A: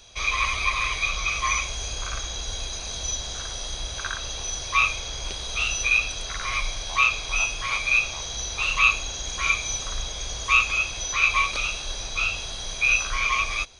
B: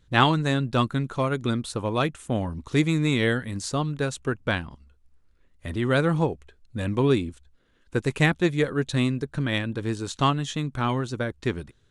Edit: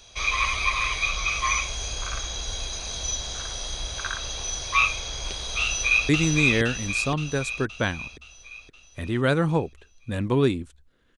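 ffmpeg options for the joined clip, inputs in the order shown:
-filter_complex "[0:a]apad=whole_dur=11.17,atrim=end=11.17,atrim=end=6.092[a];[1:a]atrim=start=2.758:end=7.84[b];[a][b]acrossfade=d=0.004:c1=hsin:c2=hsin,asplit=2[c][d];[d]afade=t=in:st=5.61:d=0.01,afade=t=out:st=6.09:d=0.01,aecho=0:1:520|1040|1560|2080|2600|3120|3640|4160:0.841395|0.462767|0.254522|0.139987|0.0769929|0.0423461|0.0232904|0.0128097[e];[c][e]amix=inputs=2:normalize=0"

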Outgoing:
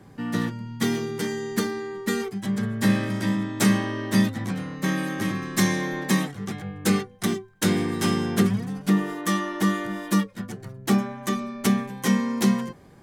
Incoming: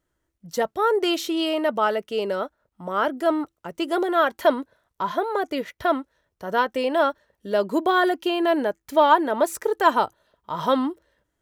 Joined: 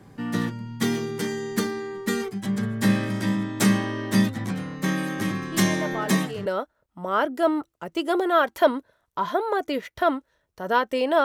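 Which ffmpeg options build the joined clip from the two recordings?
-filter_complex "[1:a]asplit=2[a][b];[0:a]apad=whole_dur=11.24,atrim=end=11.24,atrim=end=6.462[c];[b]atrim=start=2.288:end=7.07[d];[a]atrim=start=1.35:end=2.29,asetpts=PTS-STARTPTS,volume=-9.5dB,afade=t=in:d=0.004:c=hsin,afade=t=out:st=0.936:d=0.004:c=hsin,adelay=5520[e];[c][d]acrossfade=d=0.004:c1=hsin:c2=hsin[f];[f][e]amix=inputs=2:normalize=0"

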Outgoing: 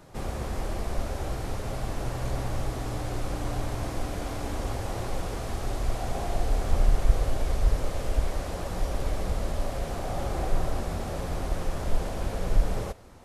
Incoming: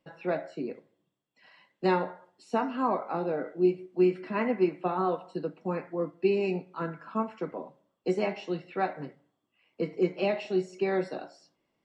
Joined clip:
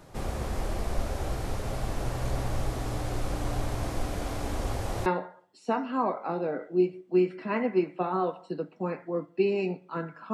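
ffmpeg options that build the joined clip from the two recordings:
-filter_complex "[0:a]apad=whole_dur=10.33,atrim=end=10.33,atrim=end=5.062[a];[1:a]atrim=start=1.908:end=7.18[b];[a][b]acrossfade=d=0.004:c1=hsin:c2=hsin"

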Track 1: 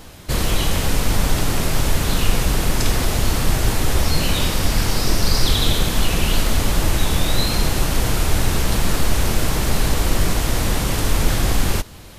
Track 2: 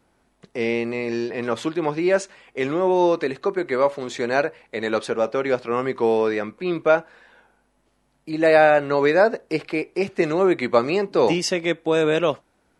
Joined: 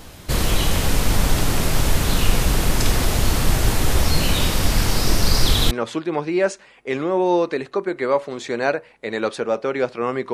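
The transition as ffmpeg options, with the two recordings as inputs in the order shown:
-filter_complex "[0:a]apad=whole_dur=10.33,atrim=end=10.33,atrim=end=5.712[a];[1:a]atrim=start=1.408:end=6.03[b];[a][b]acrossfade=d=0.004:c1=hsin:c2=hsin"

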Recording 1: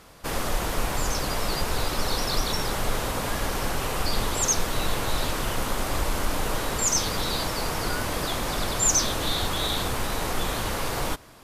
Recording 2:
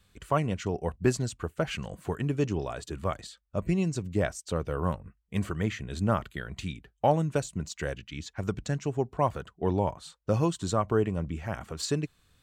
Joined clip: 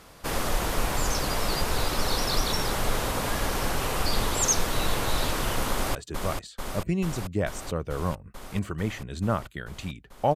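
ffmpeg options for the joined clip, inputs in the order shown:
-filter_complex "[0:a]apad=whole_dur=10.35,atrim=end=10.35,atrim=end=5.952[a];[1:a]atrim=start=2.748:end=7.15[b];[a][b]acrossfade=d=0.004:c1=hsin:c2=hsin,asplit=2[c][d];[d]afade=t=in:st=5.7:d=0.01,afade=t=out:st=5.95:d=0.01,aecho=0:1:440|880|1320|1760|2200|2640|3080|3520|3960|4400|4840|5280:0.562341|0.449873|0.359898|0.287919|0.230335|0.184268|0.147414|0.117932|0.0943452|0.0754762|0.0603809|0.0483048[e];[c][e]amix=inputs=2:normalize=0"

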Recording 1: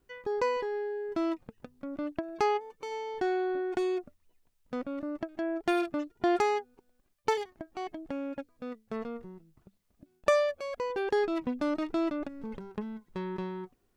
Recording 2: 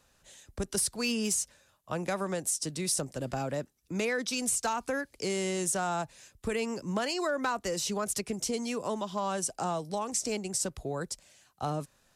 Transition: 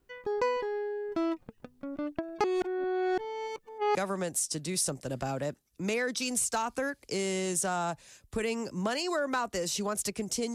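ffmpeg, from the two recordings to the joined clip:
-filter_complex "[0:a]apad=whole_dur=10.54,atrim=end=10.54,asplit=2[a][b];[a]atrim=end=2.442[c];[b]atrim=start=2.438:end=3.952,asetpts=PTS-STARTPTS,areverse[d];[1:a]atrim=start=2.058:end=8.65[e];[c][d]acrossfade=d=0.004:c1=hsin:c2=hsin[f];[f][e]acrossfade=d=0.004:c1=hsin:c2=hsin"

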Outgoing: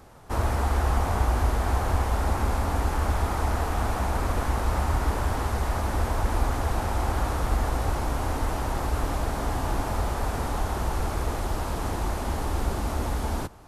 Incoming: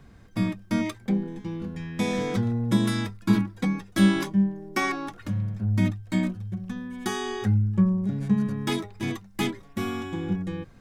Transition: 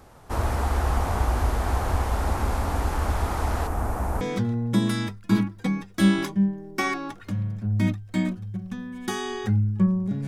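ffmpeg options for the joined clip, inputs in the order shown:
-filter_complex "[0:a]asettb=1/sr,asplit=3[a][b][c];[a]atrim=end=3.674[d];[b]atrim=start=3.67:end=4.21,asetpts=PTS-STARTPTS,afade=t=in:d=0.004:c=qsin,afade=t=out:st=0.536:d=0.004:c=qsin,equalizer=f=3.7k:t=o:w=1.8:g=-12[e];[c]atrim=start=4.206[f];[d][e]acrossfade=d=0.004:c1=hsin:c2=qsin[g];[g][f]acrossfade=d=0.004:c1=qsin:c2=hsin,apad=whole_dur=10.27,atrim=end=10.27,atrim=end=4.212[h];[1:a]atrim=start=2.188:end=8.25[i];[h][i]acrossfade=d=0.004:c1=hsin:c2=hsin"

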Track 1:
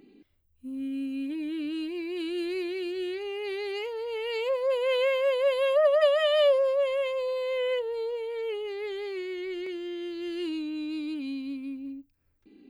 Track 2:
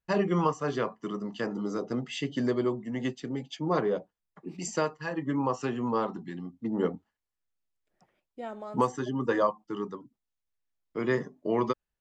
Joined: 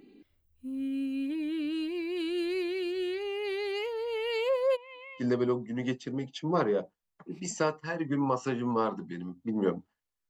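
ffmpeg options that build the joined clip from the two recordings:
-filter_complex "[0:a]asplit=3[a][b][c];[a]afade=t=out:st=4.75:d=0.02[d];[b]asplit=3[e][f][g];[e]bandpass=f=300:t=q:w=8,volume=0dB[h];[f]bandpass=f=870:t=q:w=8,volume=-6dB[i];[g]bandpass=f=2.24k:t=q:w=8,volume=-9dB[j];[h][i][j]amix=inputs=3:normalize=0,afade=t=in:st=4.75:d=0.02,afade=t=out:st=5.25:d=0.02[k];[c]afade=t=in:st=5.25:d=0.02[l];[d][k][l]amix=inputs=3:normalize=0,apad=whole_dur=10.29,atrim=end=10.29,atrim=end=5.25,asetpts=PTS-STARTPTS[m];[1:a]atrim=start=2.34:end=7.46,asetpts=PTS-STARTPTS[n];[m][n]acrossfade=d=0.08:c1=tri:c2=tri"

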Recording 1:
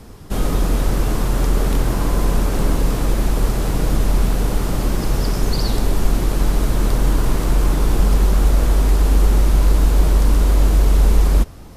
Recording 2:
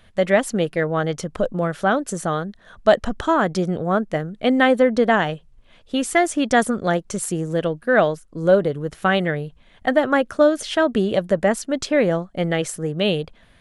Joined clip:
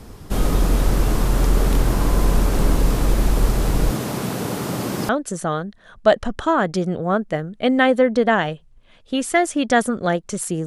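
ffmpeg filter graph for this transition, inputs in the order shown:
-filter_complex "[0:a]asettb=1/sr,asplit=3[a][b][c];[a]atrim=end=3.914[d];[b]atrim=start=3.91:end=5.09,asetpts=PTS-STARTPTS,afade=t=in:d=0.004:c=qsin,afade=t=out:st=1.176:d=0.004:c=qsin,highpass=f=120:w=0.5412,highpass=f=120:w=1.3066[e];[c]atrim=start=5.086[f];[d][e]acrossfade=d=0.004:c1=hsin:c2=qsin[g];[g][f]acrossfade=d=0.004:c1=qsin:c2=hsin,apad=whole_dur=10.66,atrim=end=10.66,atrim=end=5.092[h];[1:a]atrim=start=1.898:end=7.47[i];[h][i]acrossfade=d=0.004:c1=hsin:c2=hsin"

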